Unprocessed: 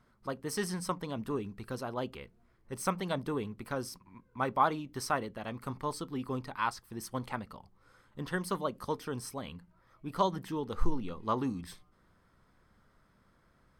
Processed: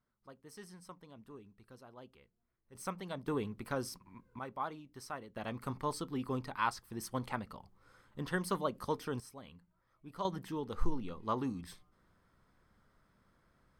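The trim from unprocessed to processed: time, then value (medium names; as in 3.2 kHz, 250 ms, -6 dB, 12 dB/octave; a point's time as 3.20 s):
-17.5 dB
from 2.75 s -8.5 dB
from 3.28 s -1 dB
from 4.39 s -12 dB
from 5.36 s -1 dB
from 9.20 s -11 dB
from 10.25 s -3.5 dB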